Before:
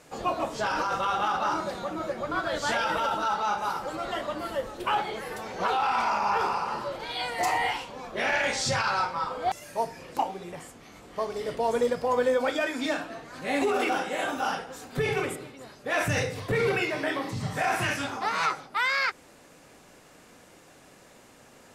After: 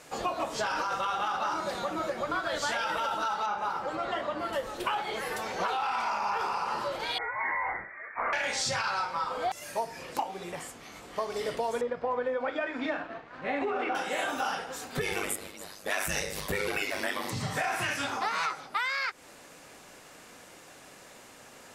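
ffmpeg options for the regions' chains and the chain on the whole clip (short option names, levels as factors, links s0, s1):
-filter_complex "[0:a]asettb=1/sr,asplit=3[s0][s1][s2];[s0]atrim=end=3.464[s3];[s1]atrim=start=3.46:end=4.53,asetpts=PTS-STARTPTS,afade=t=in:d=0.004:c=qsin,afade=t=out:st=1.066:d=0.004:c=qsin,highpass=50,aemphasis=mode=reproduction:type=75kf[s4];[s2]atrim=start=4.526[s5];[s3][s4]acrossfade=d=0.004:c1=hsin:c2=qsin[s6];[s6][s5]acrossfade=d=0.004:c1=qsin:c2=hsin,asettb=1/sr,asplit=3[s7][s8][s9];[s7]atrim=end=7.184[s10];[s8]atrim=start=7.18:end=8.33,asetpts=PTS-STARTPTS,afade=t=in:d=0.004:c=qsin,afade=t=out:st=1.146:d=0.004:c=qsin,highpass=f=1000:w=0.5412,highpass=f=1000:w=1.3066,volume=12.6,asoftclip=hard,volume=0.0794,lowpass=f=2500:t=q:w=0.5098,lowpass=f=2500:t=q:w=0.6013,lowpass=f=2500:t=q:w=0.9,lowpass=f=2500:t=q:w=2.563,afreqshift=-2900[s11];[s9]atrim=start=8.326[s12];[s10][s11]acrossfade=d=0.004:c1=hsin:c2=qsin[s13];[s13][s12]acrossfade=d=0.004:c1=qsin:c2=hsin,asettb=1/sr,asplit=3[s14][s15][s16];[s14]atrim=end=11.814[s17];[s15]atrim=start=11.81:end=13.95,asetpts=PTS-STARTPTS,afade=t=in:d=0.004:c=qsin,afade=t=out:st=2.136:d=0.004:c=qsin,aeval=exprs='sgn(val(0))*max(abs(val(0))-0.00422,0)':c=same,lowpass=2000[s18];[s16]atrim=start=13.946[s19];[s17][s18]acrossfade=d=0.004:c1=hsin:c2=qsin[s20];[s20][s19]acrossfade=d=0.004:c1=qsin:c2=hsin,asettb=1/sr,asplit=3[s21][s22][s23];[s21]atrim=end=15.014[s24];[s22]atrim=start=15.01:end=17.3,asetpts=PTS-STARTPTS,afade=t=in:d=0.004:c=qsin,afade=t=out:st=2.286:d=0.004:c=qsin,aemphasis=mode=production:type=50kf,aeval=exprs='val(0)*sin(2*PI*50*n/s)':c=same[s25];[s23]atrim=start=17.296[s26];[s24][s25]acrossfade=d=0.004:c1=hsin:c2=qsin[s27];[s27][s26]acrossfade=d=0.004:c1=qsin:c2=hsin,lowshelf=f=500:g=-7,acompressor=threshold=0.0251:ratio=6,volume=1.68"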